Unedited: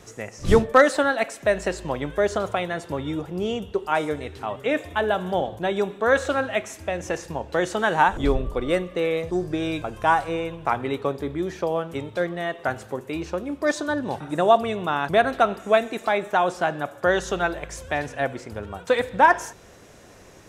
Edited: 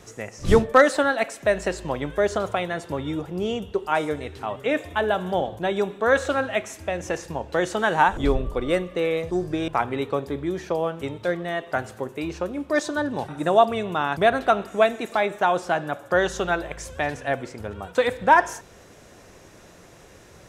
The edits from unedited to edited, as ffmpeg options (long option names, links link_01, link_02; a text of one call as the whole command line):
ffmpeg -i in.wav -filter_complex "[0:a]asplit=2[link_01][link_02];[link_01]atrim=end=9.682[link_03];[link_02]atrim=start=10.598[link_04];[link_03][link_04]acrossfade=duration=0.004:curve1=hsin:curve2=hsin" out.wav